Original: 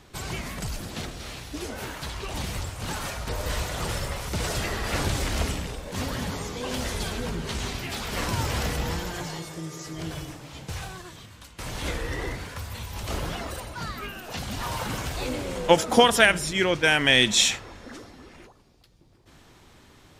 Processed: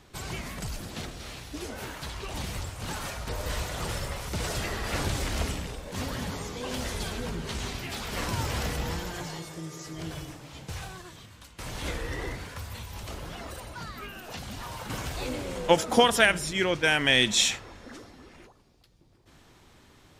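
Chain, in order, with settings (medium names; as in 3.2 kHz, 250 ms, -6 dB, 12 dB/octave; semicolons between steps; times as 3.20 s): 12.79–14.90 s: compression, threshold -32 dBFS, peak gain reduction 7 dB; trim -3 dB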